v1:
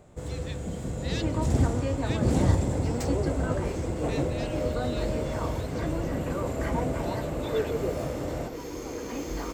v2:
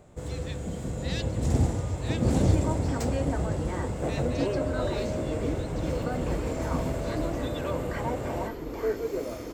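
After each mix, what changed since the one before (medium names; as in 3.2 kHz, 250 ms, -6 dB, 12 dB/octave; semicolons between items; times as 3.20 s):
second sound: entry +1.30 s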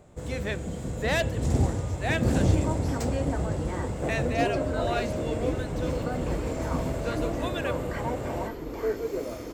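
speech: remove band-pass filter 4.5 kHz, Q 2.2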